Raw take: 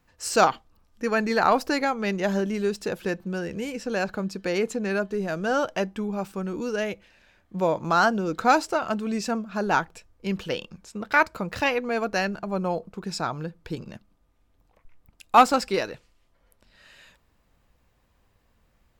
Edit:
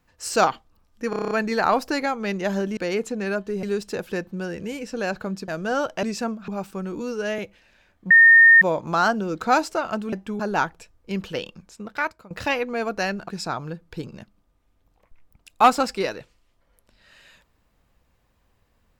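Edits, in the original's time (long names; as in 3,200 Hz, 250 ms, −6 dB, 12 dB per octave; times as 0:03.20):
0:01.10: stutter 0.03 s, 8 plays
0:04.41–0:05.27: move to 0:02.56
0:05.82–0:06.09: swap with 0:09.10–0:09.55
0:06.62–0:06.87: time-stretch 1.5×
0:07.59: insert tone 1,830 Hz −8 dBFS 0.51 s
0:10.56–0:11.46: fade out equal-power, to −22.5 dB
0:12.44–0:13.02: remove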